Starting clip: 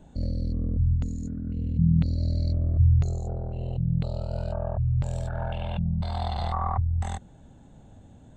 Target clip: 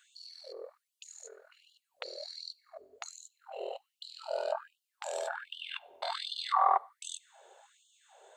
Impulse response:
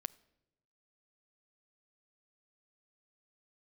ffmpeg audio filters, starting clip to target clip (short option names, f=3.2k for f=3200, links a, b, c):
-filter_complex "[0:a]asplit=2[a][b];[b]asubboost=boost=8.5:cutoff=100[c];[1:a]atrim=start_sample=2205[d];[c][d]afir=irnorm=-1:irlink=0,volume=13dB[e];[a][e]amix=inputs=2:normalize=0,afftfilt=real='re*gte(b*sr/1024,350*pow(2900/350,0.5+0.5*sin(2*PI*1.3*pts/sr)))':imag='im*gte(b*sr/1024,350*pow(2900/350,0.5+0.5*sin(2*PI*1.3*pts/sr)))':win_size=1024:overlap=0.75,volume=-7dB"